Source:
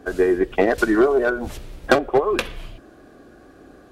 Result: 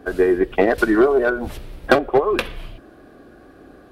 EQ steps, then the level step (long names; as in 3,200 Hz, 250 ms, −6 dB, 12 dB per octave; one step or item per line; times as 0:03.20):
parametric band 6,800 Hz −7.5 dB 0.75 octaves
+1.5 dB